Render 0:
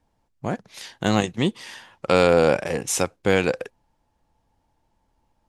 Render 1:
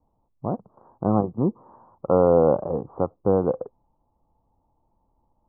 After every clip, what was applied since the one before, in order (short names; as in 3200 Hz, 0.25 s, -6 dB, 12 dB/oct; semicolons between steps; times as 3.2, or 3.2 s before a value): steep low-pass 1200 Hz 72 dB/oct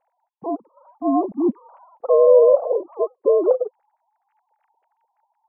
sine-wave speech; gain +4.5 dB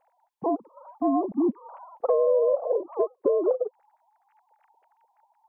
compressor 4:1, threshold -26 dBFS, peak gain reduction 14.5 dB; gain +4 dB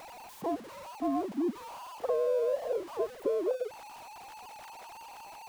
zero-crossing step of -34 dBFS; gain -8 dB